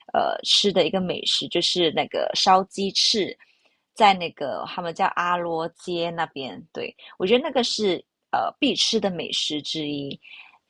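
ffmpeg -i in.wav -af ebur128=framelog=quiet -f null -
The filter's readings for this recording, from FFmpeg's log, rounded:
Integrated loudness:
  I:         -22.4 LUFS
  Threshold: -33.0 LUFS
Loudness range:
  LRA:         5.1 LU
  Threshold: -43.2 LUFS
  LRA low:   -25.6 LUFS
  LRA high:  -20.5 LUFS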